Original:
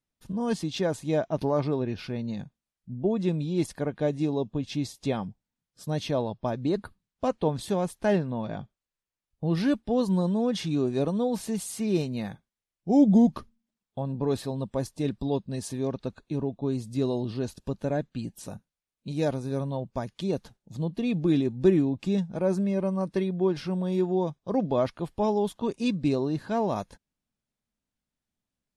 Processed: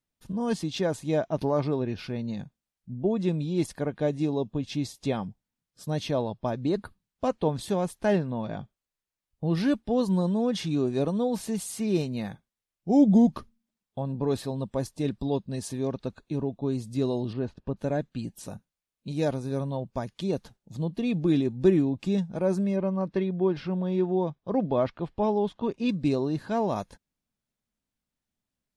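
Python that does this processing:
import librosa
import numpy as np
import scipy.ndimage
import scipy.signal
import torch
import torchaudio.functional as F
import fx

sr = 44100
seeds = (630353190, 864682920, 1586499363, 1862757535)

y = fx.lowpass(x, sr, hz=2200.0, slope=12, at=(17.33, 17.77))
y = fx.lowpass(y, sr, hz=3600.0, slope=12, at=(22.76, 25.89))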